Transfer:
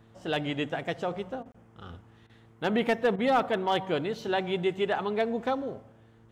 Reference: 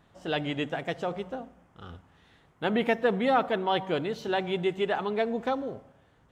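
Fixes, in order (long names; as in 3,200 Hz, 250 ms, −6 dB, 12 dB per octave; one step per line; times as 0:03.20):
clipped peaks rebuilt −17.5 dBFS
hum removal 112.8 Hz, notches 4
repair the gap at 0:01.52, 25 ms
repair the gap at 0:01.43/0:02.27/0:03.16, 24 ms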